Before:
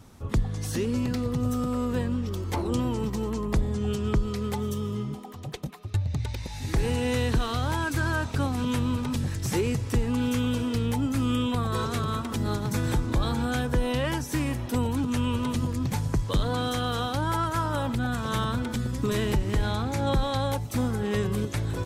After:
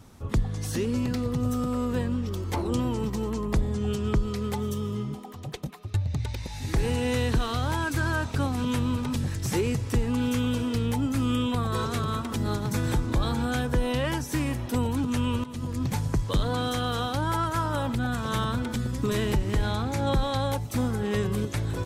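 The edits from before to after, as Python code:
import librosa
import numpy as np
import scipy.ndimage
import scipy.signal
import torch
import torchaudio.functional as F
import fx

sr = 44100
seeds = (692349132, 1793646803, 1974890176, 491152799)

y = fx.edit(x, sr, fx.fade_in_from(start_s=15.44, length_s=0.38, floor_db=-16.5), tone=tone)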